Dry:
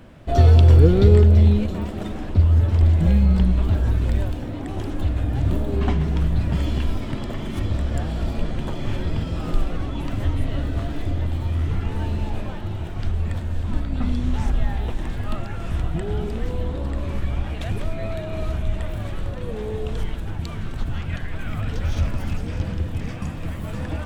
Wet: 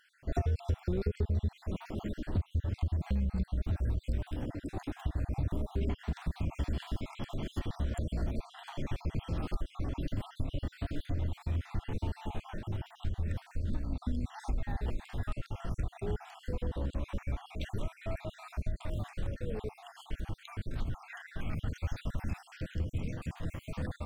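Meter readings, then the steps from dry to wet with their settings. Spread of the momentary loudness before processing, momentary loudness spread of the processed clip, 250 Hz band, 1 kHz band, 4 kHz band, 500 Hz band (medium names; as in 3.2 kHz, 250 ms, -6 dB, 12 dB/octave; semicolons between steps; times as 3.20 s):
14 LU, 8 LU, -13.5 dB, -12.0 dB, -12.0 dB, -14.5 dB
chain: random holes in the spectrogram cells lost 51%; compression 6:1, threshold -21 dBFS, peak gain reduction 12 dB; trim -6.5 dB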